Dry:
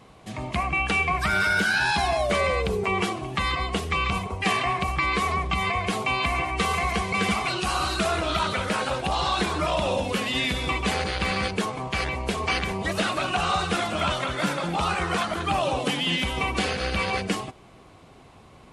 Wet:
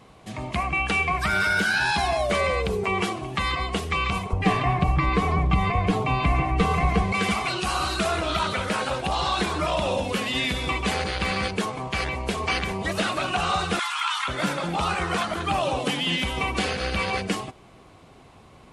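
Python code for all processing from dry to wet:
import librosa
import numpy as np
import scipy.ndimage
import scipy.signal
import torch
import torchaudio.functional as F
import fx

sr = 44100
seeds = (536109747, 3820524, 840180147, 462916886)

y = fx.chain(x, sr, fx.tilt_eq(slope=-3.0),
    fx.comb(ms=6.7, depth=0.45), at=(4.33, 7.12))
y = fx.chain(y, sr, fx.steep_highpass(hz=850.0, slope=96),
    fx.env_flatten(amount_pct=50), at=(13.79, 14.28))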